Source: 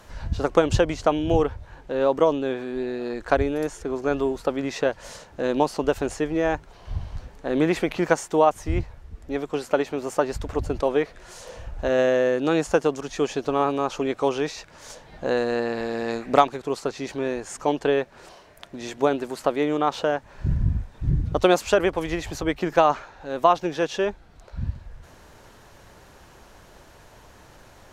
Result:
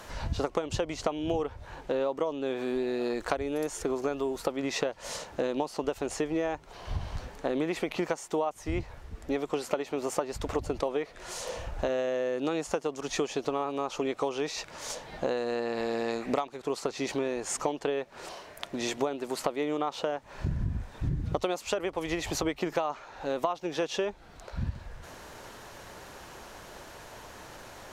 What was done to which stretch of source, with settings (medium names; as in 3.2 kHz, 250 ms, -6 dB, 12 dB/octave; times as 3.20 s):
2.46–4.52 s: treble shelf 9.6 kHz +8 dB
whole clip: bass shelf 190 Hz -8.5 dB; compression 10:1, threshold -31 dBFS; dynamic bell 1.6 kHz, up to -6 dB, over -58 dBFS, Q 4.9; trim +5 dB